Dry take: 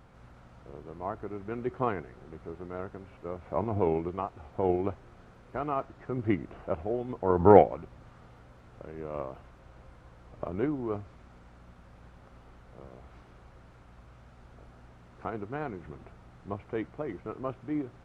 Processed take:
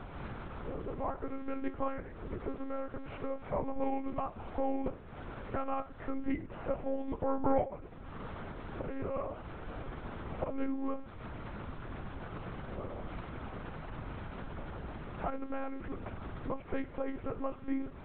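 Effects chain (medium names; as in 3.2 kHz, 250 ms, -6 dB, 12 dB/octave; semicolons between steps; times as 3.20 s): compression 2.5:1, threshold -48 dBFS, peak gain reduction 24 dB; flange 0.33 Hz, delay 9.1 ms, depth 10 ms, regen -77%; monotone LPC vocoder at 8 kHz 270 Hz; trim +15.5 dB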